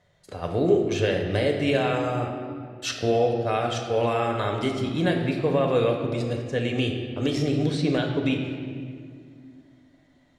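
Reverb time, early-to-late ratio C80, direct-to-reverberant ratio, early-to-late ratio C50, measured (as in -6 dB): 2.1 s, 6.0 dB, 1.5 dB, 4.5 dB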